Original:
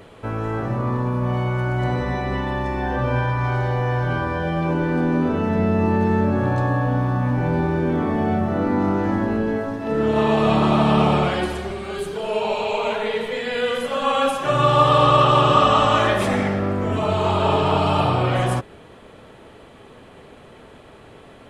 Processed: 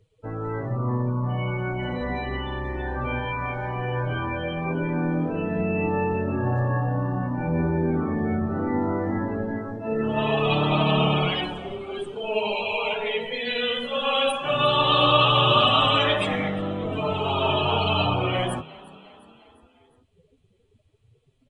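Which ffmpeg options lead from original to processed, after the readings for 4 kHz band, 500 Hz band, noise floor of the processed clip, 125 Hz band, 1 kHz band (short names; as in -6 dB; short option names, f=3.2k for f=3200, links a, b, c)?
+4.5 dB, -4.5 dB, -63 dBFS, -5.0 dB, -5.0 dB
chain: -filter_complex "[0:a]afftdn=nr=30:nf=-30,acrossover=split=110|920[a][b][c];[a]acompressor=mode=upward:threshold=-42dB:ratio=2.5[d];[d][b][c]amix=inputs=3:normalize=0,flanger=delay=6.3:depth=6.7:regen=12:speed=0.18:shape=sinusoidal,aexciter=amount=4.8:drive=3.6:freq=2.3k,asplit=2[e][f];[f]asplit=4[g][h][i][j];[g]adelay=354,afreqshift=34,volume=-21dB[k];[h]adelay=708,afreqshift=68,volume=-25.9dB[l];[i]adelay=1062,afreqshift=102,volume=-30.8dB[m];[j]adelay=1416,afreqshift=136,volume=-35.6dB[n];[k][l][m][n]amix=inputs=4:normalize=0[o];[e][o]amix=inputs=2:normalize=0,aresample=22050,aresample=44100,volume=-1.5dB"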